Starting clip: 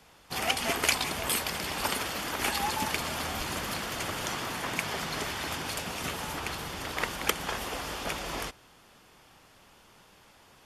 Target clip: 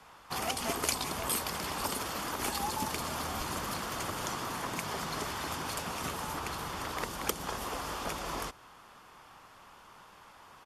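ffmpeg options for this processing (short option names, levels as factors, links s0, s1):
-filter_complex "[0:a]equalizer=f=1100:t=o:w=1.1:g=10.5,acrossover=split=560|4000[s0][s1][s2];[s1]acompressor=threshold=0.0158:ratio=6[s3];[s0][s3][s2]amix=inputs=3:normalize=0,aresample=32000,aresample=44100,volume=0.794"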